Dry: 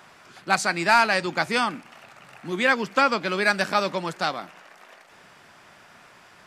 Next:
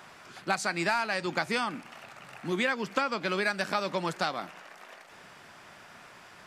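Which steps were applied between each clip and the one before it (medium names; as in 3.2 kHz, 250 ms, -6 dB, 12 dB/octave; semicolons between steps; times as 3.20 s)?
compression 6:1, threshold -25 dBFS, peak gain reduction 12 dB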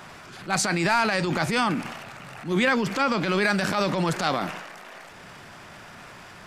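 bass shelf 190 Hz +9.5 dB; transient shaper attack -10 dB, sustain +7 dB; trim +6 dB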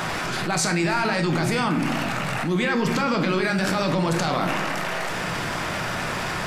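peak limiter -17.5 dBFS, peak gain reduction 9.5 dB; simulated room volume 170 m³, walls mixed, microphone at 0.6 m; level flattener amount 70%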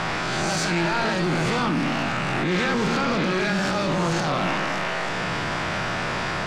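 reverse spectral sustain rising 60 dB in 1.10 s; wavefolder -15.5 dBFS; low-pass 5.9 kHz 12 dB/octave; trim -1.5 dB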